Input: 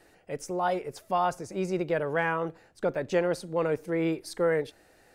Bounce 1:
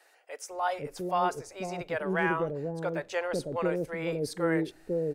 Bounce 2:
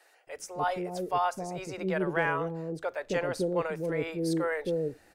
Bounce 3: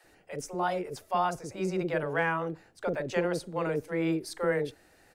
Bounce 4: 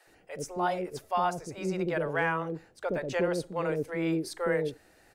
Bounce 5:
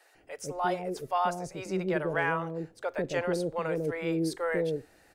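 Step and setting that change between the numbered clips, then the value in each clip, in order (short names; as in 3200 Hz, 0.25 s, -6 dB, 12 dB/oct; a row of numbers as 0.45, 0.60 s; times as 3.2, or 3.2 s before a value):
bands offset in time, time: 500, 270, 40, 70, 150 ms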